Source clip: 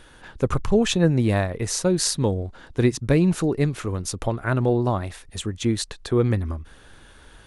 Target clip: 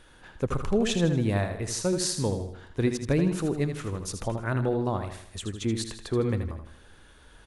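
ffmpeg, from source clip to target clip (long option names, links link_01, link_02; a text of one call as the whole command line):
ffmpeg -i in.wav -af "aecho=1:1:79|158|237|316|395:0.398|0.179|0.0806|0.0363|0.0163,volume=-6dB" out.wav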